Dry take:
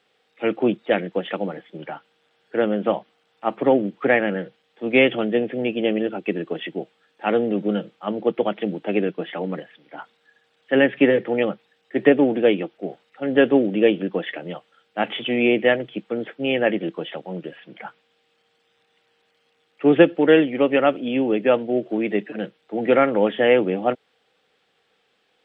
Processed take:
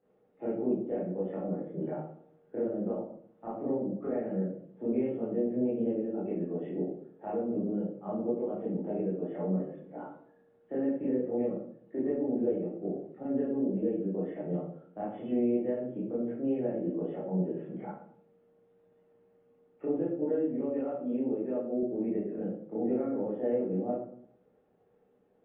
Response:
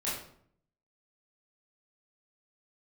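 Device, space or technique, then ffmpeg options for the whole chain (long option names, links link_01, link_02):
television next door: -filter_complex "[0:a]acompressor=threshold=-33dB:ratio=5,lowpass=500[link_01];[1:a]atrim=start_sample=2205[link_02];[link_01][link_02]afir=irnorm=-1:irlink=0,asettb=1/sr,asplit=3[link_03][link_04][link_05];[link_03]atrim=end=20.854[link_06];[link_04]atrim=start=20.85:end=21.83,asetpts=PTS-STARTPTS,afade=type=in:duration=0.004:curve=qsin,afade=type=out:start_time=0.976:duration=0.004:curve=qsin,highpass=frequency=220:poles=1[link_07];[link_05]atrim=start=21.826[link_08];[link_06][link_07]acrossfade=duration=0.004:curve1=hsin:curve2=qsin[link_09];[link_09][link_08]acrossfade=duration=0.004:curve1=qsin:curve2=hsin"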